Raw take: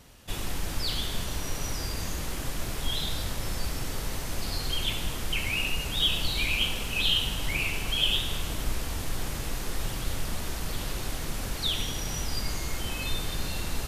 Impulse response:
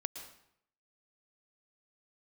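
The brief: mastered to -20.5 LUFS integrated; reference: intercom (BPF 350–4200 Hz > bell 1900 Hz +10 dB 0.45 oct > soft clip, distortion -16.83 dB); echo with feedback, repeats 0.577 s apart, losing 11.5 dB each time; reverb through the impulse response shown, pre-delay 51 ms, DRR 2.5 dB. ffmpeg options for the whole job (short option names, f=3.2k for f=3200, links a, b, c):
-filter_complex "[0:a]aecho=1:1:577|1154|1731:0.266|0.0718|0.0194,asplit=2[a][b];[1:a]atrim=start_sample=2205,adelay=51[c];[b][c]afir=irnorm=-1:irlink=0,volume=-2dB[d];[a][d]amix=inputs=2:normalize=0,highpass=350,lowpass=4.2k,equalizer=f=1.9k:t=o:w=0.45:g=10,asoftclip=threshold=-20dB,volume=9.5dB"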